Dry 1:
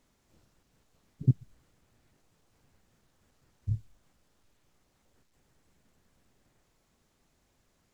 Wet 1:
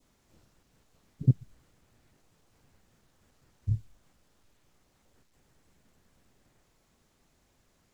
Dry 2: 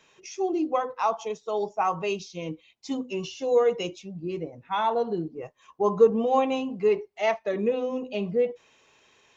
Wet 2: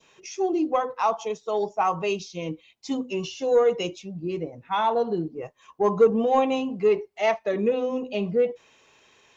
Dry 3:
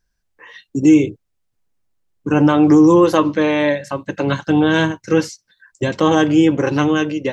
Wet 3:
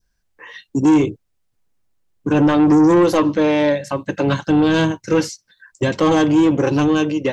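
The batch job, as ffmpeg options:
-af "adynamicequalizer=threshold=0.0178:dfrequency=1700:dqfactor=1.5:tfrequency=1700:tqfactor=1.5:attack=5:release=100:ratio=0.375:range=2.5:mode=cutabove:tftype=bell,asoftclip=type=tanh:threshold=0.282,volume=1.33"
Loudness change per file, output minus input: +1.5 LU, +1.5 LU, -1.0 LU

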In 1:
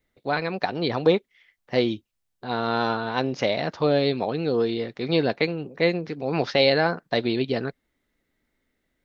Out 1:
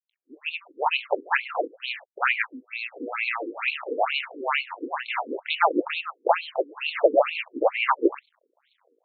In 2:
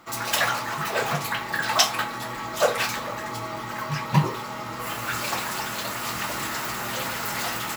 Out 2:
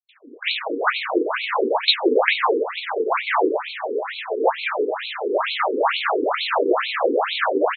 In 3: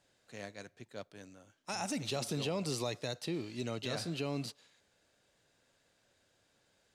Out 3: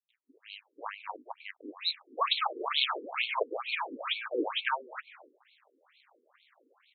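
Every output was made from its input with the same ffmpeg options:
-filter_complex "[0:a]afftfilt=real='real(if(lt(b,272),68*(eq(floor(b/68),0)*1+eq(floor(b/68),1)*2+eq(floor(b/68),2)*3+eq(floor(b/68),3)*0)+mod(b,68),b),0)':imag='imag(if(lt(b,272),68*(eq(floor(b/68),0)*1+eq(floor(b/68),1)*2+eq(floor(b/68),2)*3+eq(floor(b/68),3)*0)+mod(b,68),b),0)':win_size=2048:overlap=0.75,acrossover=split=240|960[s0][s1][s2];[s1]dynaudnorm=f=220:g=5:m=2[s3];[s0][s3][s2]amix=inputs=3:normalize=0,acrusher=bits=10:mix=0:aa=0.000001,aresample=16000,asoftclip=type=tanh:threshold=0.211,aresample=44100,acrossover=split=210|2600[s4][s5][s6];[s6]adelay=90[s7];[s5]adelay=490[s8];[s4][s8][s7]amix=inputs=3:normalize=0,alimiter=level_in=10:limit=0.891:release=50:level=0:latency=1,afftfilt=real='re*between(b*sr/1024,340*pow(3100/340,0.5+0.5*sin(2*PI*2.2*pts/sr))/1.41,340*pow(3100/340,0.5+0.5*sin(2*PI*2.2*pts/sr))*1.41)':imag='im*between(b*sr/1024,340*pow(3100/340,0.5+0.5*sin(2*PI*2.2*pts/sr))/1.41,340*pow(3100/340,0.5+0.5*sin(2*PI*2.2*pts/sr))*1.41)':win_size=1024:overlap=0.75"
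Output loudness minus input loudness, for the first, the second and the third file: -1.5 LU, +5.0 LU, +6.0 LU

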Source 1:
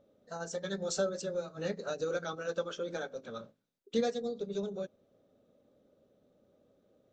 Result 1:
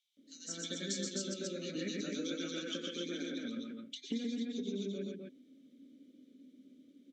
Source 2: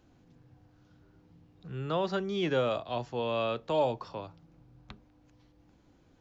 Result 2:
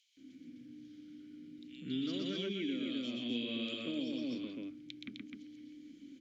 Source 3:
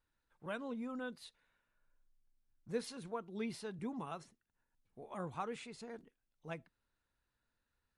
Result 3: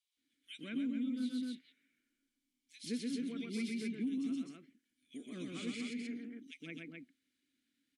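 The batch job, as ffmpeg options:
-filter_complex "[0:a]equalizer=f=270:t=o:w=1.2:g=7,acrossover=split=5800[s0][s1];[s1]acontrast=65[s2];[s0][s2]amix=inputs=2:normalize=0,crystalizer=i=6.5:c=0,asplit=3[s3][s4][s5];[s3]bandpass=f=270:t=q:w=8,volume=1[s6];[s4]bandpass=f=2290:t=q:w=8,volume=0.501[s7];[s5]bandpass=f=3010:t=q:w=8,volume=0.355[s8];[s6][s7][s8]amix=inputs=3:normalize=0,asplit=2[s9][s10];[s10]aecho=0:1:122.4|256.6:0.708|0.631[s11];[s9][s11]amix=inputs=2:normalize=0,acompressor=threshold=0.00708:ratio=16,highshelf=f=10000:g=-4.5,acrossover=split=2600[s12][s13];[s12]adelay=170[s14];[s14][s13]amix=inputs=2:normalize=0,volume=2.99"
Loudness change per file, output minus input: -3.0 LU, -7.0 LU, +4.0 LU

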